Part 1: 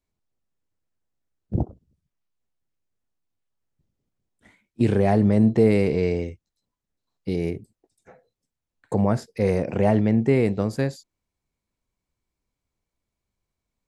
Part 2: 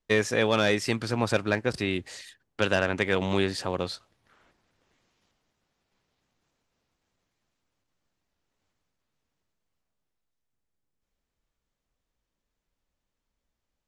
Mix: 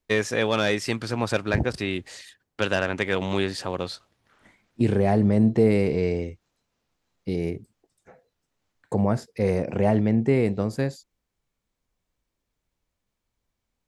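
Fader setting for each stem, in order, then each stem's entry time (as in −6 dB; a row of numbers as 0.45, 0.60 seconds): −1.5, +0.5 decibels; 0.00, 0.00 seconds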